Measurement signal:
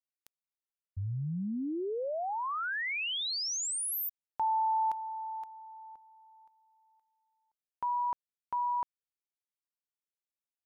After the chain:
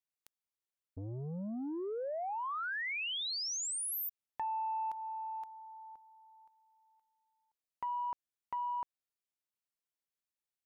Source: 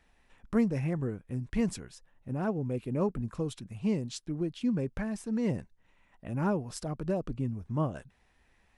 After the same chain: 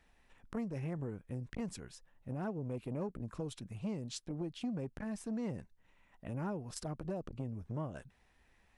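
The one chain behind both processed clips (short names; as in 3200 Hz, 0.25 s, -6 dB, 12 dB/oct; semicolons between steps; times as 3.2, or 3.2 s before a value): compressor 4:1, threshold -33 dBFS; core saturation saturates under 450 Hz; gain -2 dB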